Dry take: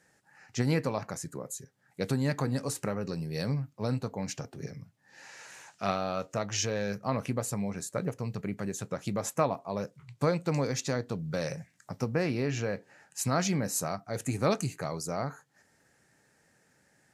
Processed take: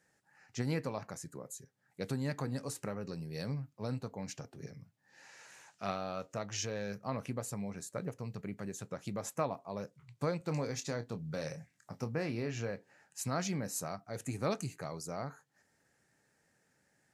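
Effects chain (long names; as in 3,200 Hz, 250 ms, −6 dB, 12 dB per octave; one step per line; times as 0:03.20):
0:10.38–0:12.71: double-tracking delay 26 ms −10 dB
level −7 dB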